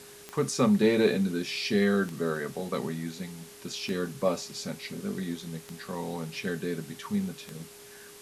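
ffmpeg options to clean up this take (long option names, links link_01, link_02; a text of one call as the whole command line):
ffmpeg -i in.wav -af "adeclick=threshold=4,bandreject=frequency=410:width=30,afftdn=noise_reduction=24:noise_floor=-49" out.wav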